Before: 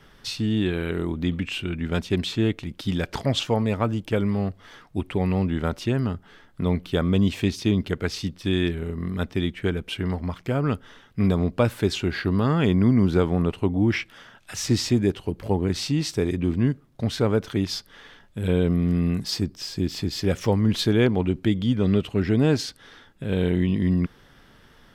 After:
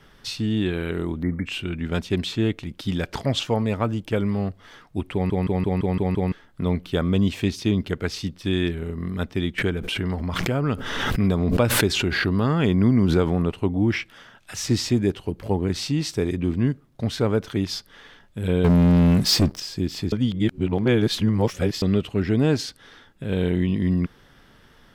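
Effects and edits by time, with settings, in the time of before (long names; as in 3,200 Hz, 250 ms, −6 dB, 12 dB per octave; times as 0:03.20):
0:01.23–0:01.46: time-frequency box erased 2,300–8,600 Hz
0:05.13: stutter in place 0.17 s, 7 plays
0:09.58–0:13.45: background raised ahead of every attack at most 31 dB per second
0:18.64–0:19.60: leveller curve on the samples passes 3
0:20.12–0:21.82: reverse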